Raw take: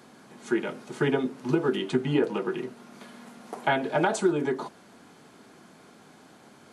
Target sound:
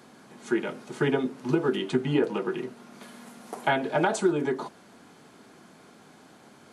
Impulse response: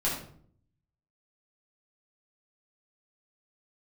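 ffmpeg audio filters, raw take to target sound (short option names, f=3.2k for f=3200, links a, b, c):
-filter_complex "[0:a]asettb=1/sr,asplit=3[a][b][c];[a]atrim=end=3.024[d];[b]atrim=start=3.02:end=3.71,asetpts=PTS-STARTPTS,afade=t=in:d=0.004:c=qsin,afade=t=out:st=0.686:d=0.004:c=qsin,highshelf=f=8.4k:g=9[e];[c]atrim=start=3.706[f];[d][e]acrossfade=d=0.004:c1=hsin:c2=qsin[g];[g][f]acrossfade=d=0.004:c1=qsin:c2=hsin"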